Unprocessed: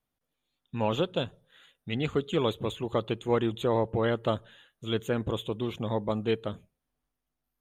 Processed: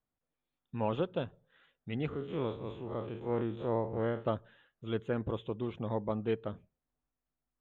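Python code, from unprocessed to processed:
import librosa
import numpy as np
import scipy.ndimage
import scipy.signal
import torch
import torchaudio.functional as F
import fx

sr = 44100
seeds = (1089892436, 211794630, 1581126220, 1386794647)

y = fx.spec_blur(x, sr, span_ms=102.0, at=(2.09, 4.26))
y = scipy.signal.sosfilt(scipy.signal.butter(2, 2100.0, 'lowpass', fs=sr, output='sos'), y)
y = y * librosa.db_to_amplitude(-4.5)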